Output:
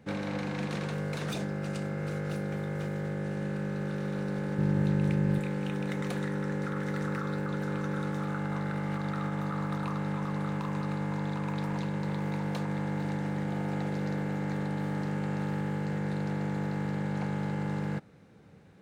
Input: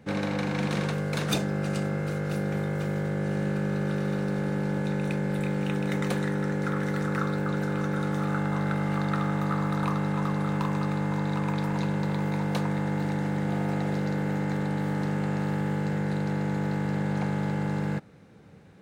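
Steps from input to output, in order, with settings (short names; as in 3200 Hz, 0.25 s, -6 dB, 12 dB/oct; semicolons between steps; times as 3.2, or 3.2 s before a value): limiter -21 dBFS, peak gain reduction 9 dB; 4.58–5.39 bell 79 Hz +12 dB 2.5 oct; Doppler distortion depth 0.21 ms; gain -3.5 dB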